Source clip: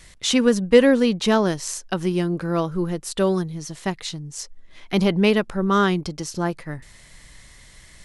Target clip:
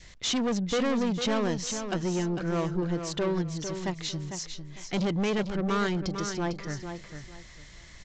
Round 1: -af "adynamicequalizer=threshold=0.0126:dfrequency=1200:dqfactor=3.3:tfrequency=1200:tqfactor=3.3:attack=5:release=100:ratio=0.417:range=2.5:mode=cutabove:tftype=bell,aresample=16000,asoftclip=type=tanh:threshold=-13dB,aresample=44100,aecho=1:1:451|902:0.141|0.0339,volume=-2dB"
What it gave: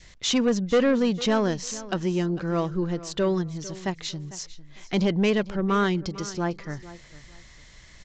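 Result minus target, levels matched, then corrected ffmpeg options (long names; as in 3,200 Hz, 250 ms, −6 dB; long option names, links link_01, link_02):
echo-to-direct −9 dB; soft clipping: distortion −7 dB
-af "adynamicequalizer=threshold=0.0126:dfrequency=1200:dqfactor=3.3:tfrequency=1200:tqfactor=3.3:attack=5:release=100:ratio=0.417:range=2.5:mode=cutabove:tftype=bell,aresample=16000,asoftclip=type=tanh:threshold=-22.5dB,aresample=44100,aecho=1:1:451|902|1353:0.398|0.0955|0.0229,volume=-2dB"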